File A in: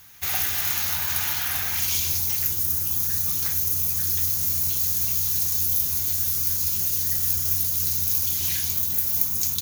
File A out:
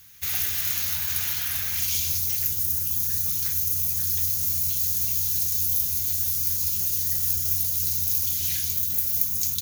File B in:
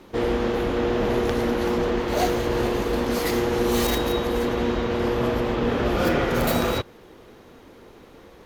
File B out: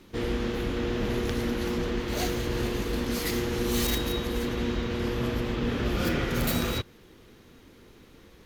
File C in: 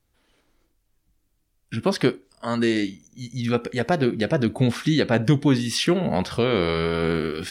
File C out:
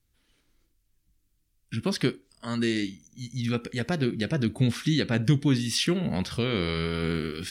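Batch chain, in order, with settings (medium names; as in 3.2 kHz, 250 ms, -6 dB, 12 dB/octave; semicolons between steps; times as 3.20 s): peaking EQ 710 Hz -11 dB 2 oct; trim -1 dB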